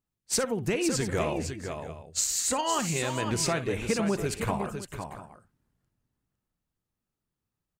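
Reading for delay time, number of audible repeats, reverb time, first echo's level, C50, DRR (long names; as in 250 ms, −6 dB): 59 ms, 3, no reverb audible, −14.5 dB, no reverb audible, no reverb audible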